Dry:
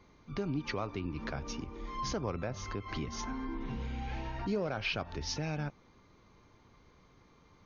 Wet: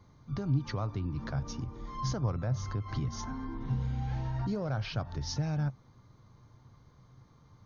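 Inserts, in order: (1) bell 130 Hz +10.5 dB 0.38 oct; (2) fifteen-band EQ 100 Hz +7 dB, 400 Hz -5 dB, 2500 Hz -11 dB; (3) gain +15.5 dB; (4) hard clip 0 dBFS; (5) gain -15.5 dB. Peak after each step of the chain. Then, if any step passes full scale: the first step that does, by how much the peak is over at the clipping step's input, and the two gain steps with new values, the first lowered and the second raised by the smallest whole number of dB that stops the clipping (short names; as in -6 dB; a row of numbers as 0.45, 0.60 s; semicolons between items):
-21.0, -19.5, -4.0, -4.0, -19.5 dBFS; no overload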